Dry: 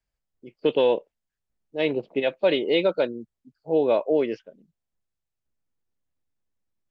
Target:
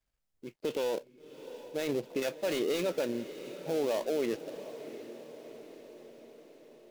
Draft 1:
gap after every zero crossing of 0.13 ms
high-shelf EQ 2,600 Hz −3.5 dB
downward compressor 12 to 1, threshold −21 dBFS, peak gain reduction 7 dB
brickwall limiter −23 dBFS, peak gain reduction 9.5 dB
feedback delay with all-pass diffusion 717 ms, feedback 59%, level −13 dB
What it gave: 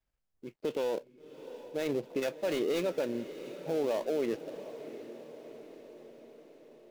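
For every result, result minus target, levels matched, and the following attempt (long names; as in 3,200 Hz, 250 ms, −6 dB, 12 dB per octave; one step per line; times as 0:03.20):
downward compressor: peak gain reduction +7 dB; 4,000 Hz band −3.0 dB
gap after every zero crossing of 0.13 ms
high-shelf EQ 2,600 Hz −3.5 dB
brickwall limiter −23 dBFS, peak gain reduction 13 dB
feedback delay with all-pass diffusion 717 ms, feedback 59%, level −13 dB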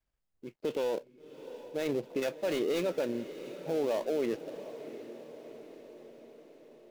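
4,000 Hz band −3.0 dB
gap after every zero crossing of 0.13 ms
high-shelf EQ 2,600 Hz +2.5 dB
brickwall limiter −23 dBFS, peak gain reduction 13.5 dB
feedback delay with all-pass diffusion 717 ms, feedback 59%, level −13 dB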